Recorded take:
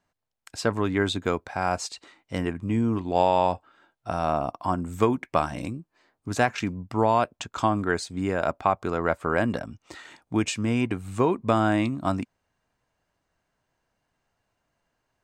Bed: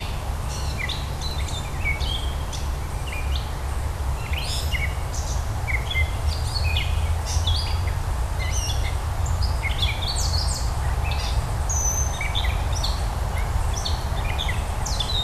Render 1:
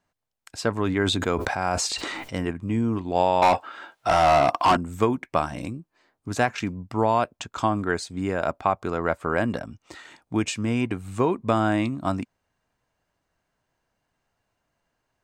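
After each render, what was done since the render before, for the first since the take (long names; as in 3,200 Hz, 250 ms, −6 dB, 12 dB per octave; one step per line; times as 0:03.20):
0:00.73–0:02.51: level that may fall only so fast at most 23 dB per second
0:03.42–0:04.77: mid-hump overdrive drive 26 dB, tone 5,200 Hz, clips at −9 dBFS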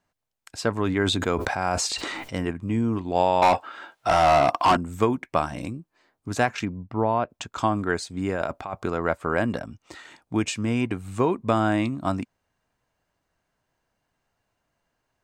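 0:06.65–0:07.30: head-to-tape spacing loss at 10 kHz 28 dB
0:08.29–0:08.89: compressor whose output falls as the input rises −28 dBFS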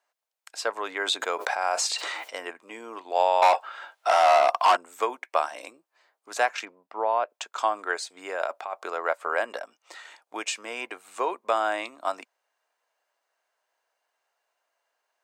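high-pass filter 510 Hz 24 dB per octave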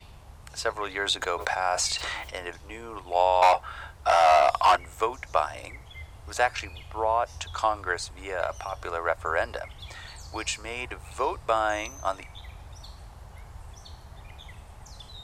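mix in bed −20.5 dB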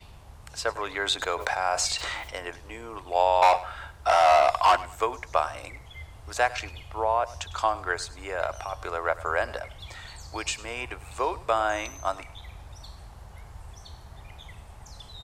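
repeating echo 101 ms, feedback 28%, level −18.5 dB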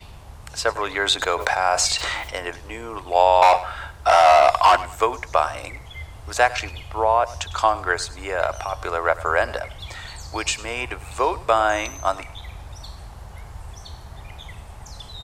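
level +6.5 dB
brickwall limiter −3 dBFS, peak gain reduction 2.5 dB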